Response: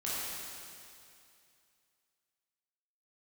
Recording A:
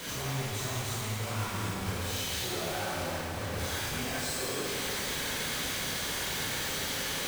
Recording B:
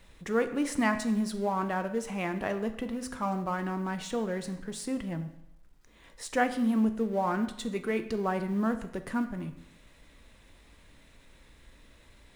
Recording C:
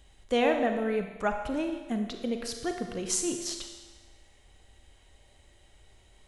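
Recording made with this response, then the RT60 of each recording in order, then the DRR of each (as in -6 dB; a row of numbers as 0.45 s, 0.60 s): A; 2.5 s, 0.80 s, 1.3 s; -9.5 dB, 8.5 dB, 4.5 dB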